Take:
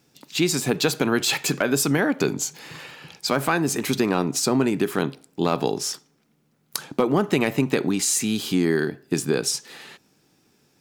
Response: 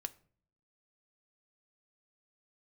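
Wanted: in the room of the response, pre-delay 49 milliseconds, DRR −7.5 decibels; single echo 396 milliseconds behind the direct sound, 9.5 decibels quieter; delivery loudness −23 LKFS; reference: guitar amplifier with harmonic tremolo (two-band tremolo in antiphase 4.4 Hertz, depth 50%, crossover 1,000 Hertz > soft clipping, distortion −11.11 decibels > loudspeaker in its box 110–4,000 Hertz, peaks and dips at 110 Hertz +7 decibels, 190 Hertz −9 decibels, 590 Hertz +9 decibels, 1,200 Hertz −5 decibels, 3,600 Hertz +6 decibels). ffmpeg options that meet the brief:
-filter_complex "[0:a]aecho=1:1:396:0.335,asplit=2[link_01][link_02];[1:a]atrim=start_sample=2205,adelay=49[link_03];[link_02][link_03]afir=irnorm=-1:irlink=0,volume=10dB[link_04];[link_01][link_04]amix=inputs=2:normalize=0,acrossover=split=1000[link_05][link_06];[link_05]aeval=exprs='val(0)*(1-0.5/2+0.5/2*cos(2*PI*4.4*n/s))':channel_layout=same[link_07];[link_06]aeval=exprs='val(0)*(1-0.5/2-0.5/2*cos(2*PI*4.4*n/s))':channel_layout=same[link_08];[link_07][link_08]amix=inputs=2:normalize=0,asoftclip=threshold=-12.5dB,highpass=110,equalizer=frequency=110:width_type=q:width=4:gain=7,equalizer=frequency=190:width_type=q:width=4:gain=-9,equalizer=frequency=590:width_type=q:width=4:gain=9,equalizer=frequency=1200:width_type=q:width=4:gain=-5,equalizer=frequency=3600:width_type=q:width=4:gain=6,lowpass=frequency=4000:width=0.5412,lowpass=frequency=4000:width=1.3066,volume=-2.5dB"

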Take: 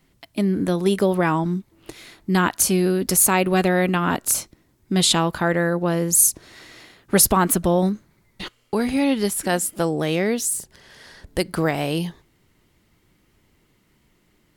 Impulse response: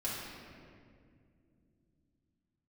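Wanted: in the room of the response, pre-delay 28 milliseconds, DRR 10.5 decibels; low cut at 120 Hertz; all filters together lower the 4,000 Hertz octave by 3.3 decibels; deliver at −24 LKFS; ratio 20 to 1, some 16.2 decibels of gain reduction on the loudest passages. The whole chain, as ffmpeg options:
-filter_complex "[0:a]highpass=120,equalizer=frequency=4000:width_type=o:gain=-4,acompressor=threshold=-28dB:ratio=20,asplit=2[link_01][link_02];[1:a]atrim=start_sample=2205,adelay=28[link_03];[link_02][link_03]afir=irnorm=-1:irlink=0,volume=-14.5dB[link_04];[link_01][link_04]amix=inputs=2:normalize=0,volume=9dB"

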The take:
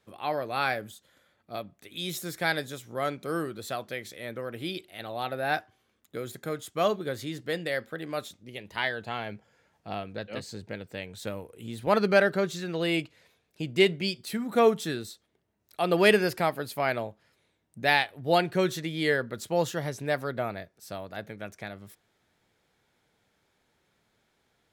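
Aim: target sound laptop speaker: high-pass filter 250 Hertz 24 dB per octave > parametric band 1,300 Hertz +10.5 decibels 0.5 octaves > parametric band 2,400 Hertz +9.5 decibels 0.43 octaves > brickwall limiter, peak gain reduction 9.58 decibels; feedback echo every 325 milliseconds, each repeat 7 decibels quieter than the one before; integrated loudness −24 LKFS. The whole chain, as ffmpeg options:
ffmpeg -i in.wav -af "highpass=frequency=250:width=0.5412,highpass=frequency=250:width=1.3066,equalizer=frequency=1300:width_type=o:width=0.5:gain=10.5,equalizer=frequency=2400:width_type=o:width=0.43:gain=9.5,aecho=1:1:325|650|975|1300|1625:0.447|0.201|0.0905|0.0407|0.0183,volume=4dB,alimiter=limit=-9.5dB:level=0:latency=1" out.wav

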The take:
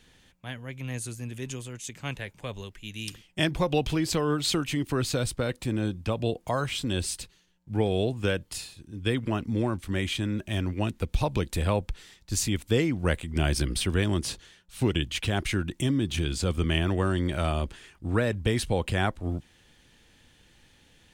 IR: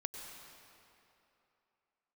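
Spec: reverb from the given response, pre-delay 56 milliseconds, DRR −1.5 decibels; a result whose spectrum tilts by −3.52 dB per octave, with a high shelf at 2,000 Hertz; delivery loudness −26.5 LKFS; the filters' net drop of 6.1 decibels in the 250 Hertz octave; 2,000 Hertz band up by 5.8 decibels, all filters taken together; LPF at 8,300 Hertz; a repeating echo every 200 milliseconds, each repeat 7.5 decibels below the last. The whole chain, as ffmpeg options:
-filter_complex "[0:a]lowpass=8300,equalizer=frequency=250:width_type=o:gain=-9,highshelf=frequency=2000:gain=5,equalizer=frequency=2000:width_type=o:gain=4.5,aecho=1:1:200|400|600|800|1000:0.422|0.177|0.0744|0.0312|0.0131,asplit=2[link_01][link_02];[1:a]atrim=start_sample=2205,adelay=56[link_03];[link_02][link_03]afir=irnorm=-1:irlink=0,volume=2dB[link_04];[link_01][link_04]amix=inputs=2:normalize=0,volume=-2.5dB"

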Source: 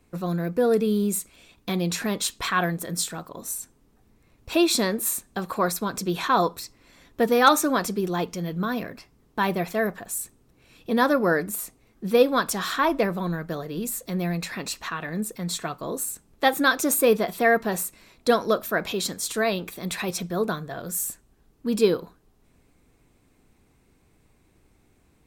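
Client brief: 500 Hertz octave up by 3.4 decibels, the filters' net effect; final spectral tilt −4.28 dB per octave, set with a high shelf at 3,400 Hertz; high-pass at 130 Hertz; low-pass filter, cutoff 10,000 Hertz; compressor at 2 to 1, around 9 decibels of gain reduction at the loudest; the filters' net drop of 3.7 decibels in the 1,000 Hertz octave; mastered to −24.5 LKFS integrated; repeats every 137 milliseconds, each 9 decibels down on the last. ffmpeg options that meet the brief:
ffmpeg -i in.wav -af "highpass=130,lowpass=10000,equalizer=frequency=500:width_type=o:gain=5.5,equalizer=frequency=1000:width_type=o:gain=-7,highshelf=frequency=3400:gain=-3,acompressor=threshold=-27dB:ratio=2,aecho=1:1:137|274|411|548:0.355|0.124|0.0435|0.0152,volume=4.5dB" out.wav

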